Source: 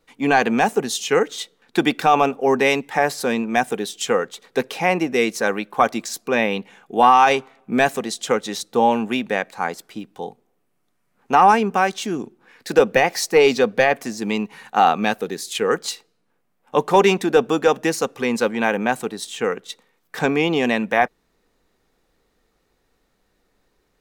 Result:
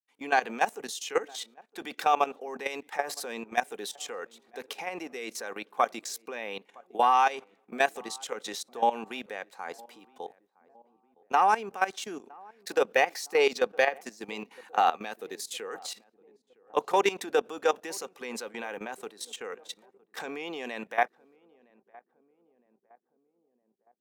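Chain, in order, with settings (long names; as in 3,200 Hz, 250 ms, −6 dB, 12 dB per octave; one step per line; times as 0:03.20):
downward expander −48 dBFS
high-pass filter 390 Hz 12 dB per octave
high-shelf EQ 6,500 Hz +2 dB
output level in coarse steps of 16 dB
feedback echo with a low-pass in the loop 962 ms, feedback 56%, low-pass 850 Hz, level −23 dB
level −5 dB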